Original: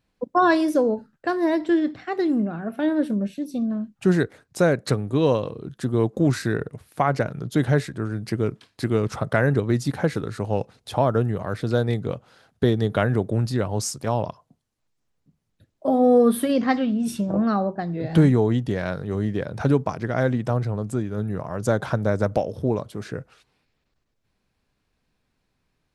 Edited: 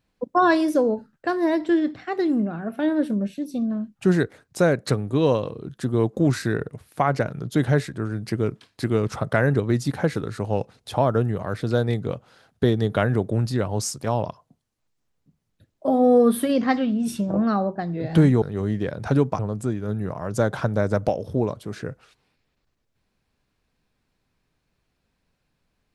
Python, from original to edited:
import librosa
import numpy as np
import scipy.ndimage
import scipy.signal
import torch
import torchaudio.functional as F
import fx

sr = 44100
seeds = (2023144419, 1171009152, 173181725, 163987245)

y = fx.edit(x, sr, fx.cut(start_s=18.42, length_s=0.54),
    fx.cut(start_s=19.93, length_s=0.75), tone=tone)